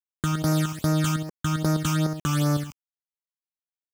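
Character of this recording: a quantiser's noise floor 8-bit, dither none; phasing stages 8, 2.5 Hz, lowest notch 520–3300 Hz

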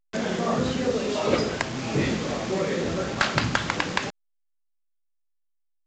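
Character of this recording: a quantiser's noise floor 6-bit, dither none; A-law

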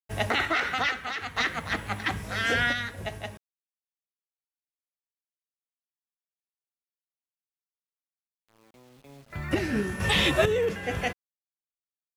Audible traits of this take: a quantiser's noise floor 10-bit, dither none; random-step tremolo 2.2 Hz, depth 70%

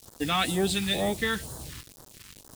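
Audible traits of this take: a quantiser's noise floor 8-bit, dither none; phasing stages 2, 2.1 Hz, lowest notch 610–2400 Hz

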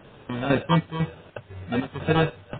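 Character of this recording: aliases and images of a low sample rate 2.1 kHz, jitter 0%; chopped level 2 Hz, depth 65%, duty 60%; a quantiser's noise floor 10-bit, dither triangular; MP3

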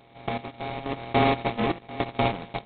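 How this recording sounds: a buzz of ramps at a fixed pitch in blocks of 64 samples; random-step tremolo, depth 80%; aliases and images of a low sample rate 1.5 kHz, jitter 0%; G.726

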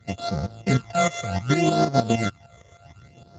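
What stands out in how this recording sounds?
a buzz of ramps at a fixed pitch in blocks of 64 samples; phasing stages 12, 0.66 Hz, lowest notch 250–2700 Hz; tremolo saw up 6.5 Hz, depth 70%; Speex

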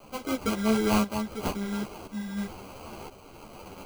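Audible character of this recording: a quantiser's noise floor 8-bit, dither triangular; tremolo saw up 0.97 Hz, depth 70%; aliases and images of a low sample rate 1.8 kHz, jitter 0%; a shimmering, thickened sound

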